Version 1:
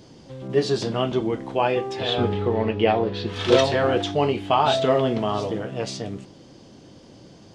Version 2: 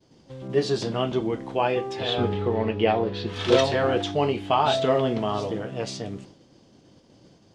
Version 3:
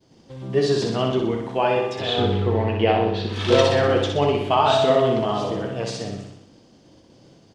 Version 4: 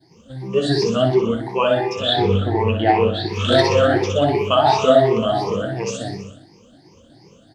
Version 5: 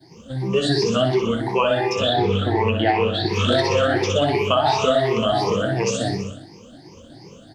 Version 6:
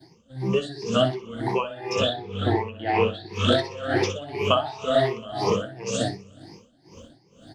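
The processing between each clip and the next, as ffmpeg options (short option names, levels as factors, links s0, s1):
-af "agate=range=0.0224:threshold=0.00891:ratio=3:detection=peak,volume=0.794"
-af "aecho=1:1:62|124|186|248|310|372|434|496:0.596|0.34|0.194|0.11|0.0629|0.0358|0.0204|0.0116,volume=1.19"
-af "afftfilt=real='re*pow(10,20/40*sin(2*PI*(0.8*log(max(b,1)*sr/1024/100)/log(2)-(2.8)*(pts-256)/sr)))':imag='im*pow(10,20/40*sin(2*PI*(0.8*log(max(b,1)*sr/1024/100)/log(2)-(2.8)*(pts-256)/sr)))':win_size=1024:overlap=0.75,volume=0.891"
-filter_complex "[0:a]acrossover=split=89|1300[s0][s1][s2];[s0]acompressor=threshold=0.00708:ratio=4[s3];[s1]acompressor=threshold=0.0631:ratio=4[s4];[s2]acompressor=threshold=0.0316:ratio=4[s5];[s3][s4][s5]amix=inputs=3:normalize=0,volume=1.88"
-af "aeval=exprs='val(0)*pow(10,-19*(0.5-0.5*cos(2*PI*2*n/s))/20)':c=same"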